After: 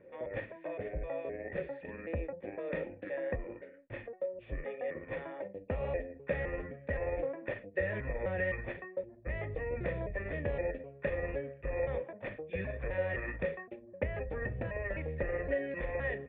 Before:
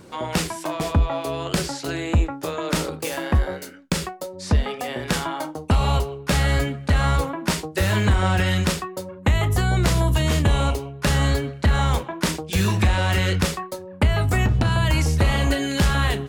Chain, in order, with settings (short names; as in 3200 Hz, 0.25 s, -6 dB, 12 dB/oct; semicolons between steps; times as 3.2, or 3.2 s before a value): trilling pitch shifter -8 st, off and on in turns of 0.258 s; vocal tract filter e